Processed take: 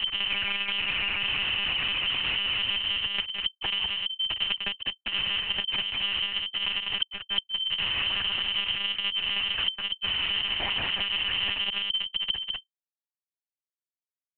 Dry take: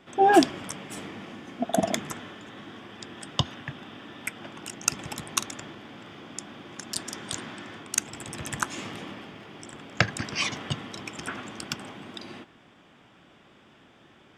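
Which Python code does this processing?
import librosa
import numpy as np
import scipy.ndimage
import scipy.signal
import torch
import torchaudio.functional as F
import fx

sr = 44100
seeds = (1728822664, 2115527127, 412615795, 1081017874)

y = fx.block_reorder(x, sr, ms=104.0, group=7)
y = fx.highpass(y, sr, hz=72.0, slope=6)
y = fx.peak_eq(y, sr, hz=400.0, db=6.0, octaves=0.47)
y = fx.echo_diffused(y, sr, ms=608, feedback_pct=48, wet_db=-8.0)
y = fx.schmitt(y, sr, flips_db=-29.5)
y = y + 10.0 ** (-4.5 / 20.0) * np.pad(y, (int(196 * sr / 1000.0), 0))[:len(y)]
y = fx.freq_invert(y, sr, carrier_hz=3100)
y = fx.lpc_monotone(y, sr, seeds[0], pitch_hz=200.0, order=8)
y = fx.band_squash(y, sr, depth_pct=70)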